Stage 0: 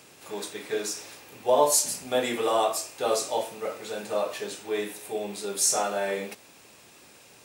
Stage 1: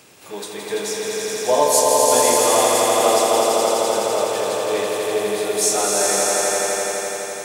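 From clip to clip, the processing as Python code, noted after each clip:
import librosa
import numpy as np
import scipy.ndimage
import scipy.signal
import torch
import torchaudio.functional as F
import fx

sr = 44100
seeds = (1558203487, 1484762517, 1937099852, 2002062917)

y = fx.echo_swell(x, sr, ms=84, loudest=5, wet_db=-4.0)
y = y * 10.0 ** (3.5 / 20.0)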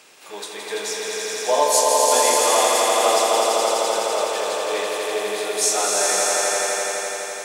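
y = fx.weighting(x, sr, curve='A')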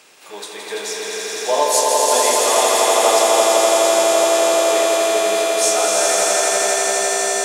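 y = fx.echo_swell(x, sr, ms=117, loudest=8, wet_db=-12)
y = y * 10.0 ** (1.0 / 20.0)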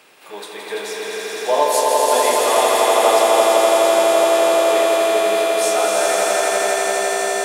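y = fx.peak_eq(x, sr, hz=6500.0, db=-9.5, octaves=1.1)
y = y * 10.0 ** (1.0 / 20.0)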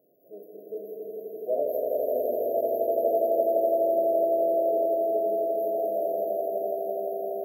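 y = fx.brickwall_bandstop(x, sr, low_hz=720.0, high_hz=12000.0)
y = y * 10.0 ** (-8.5 / 20.0)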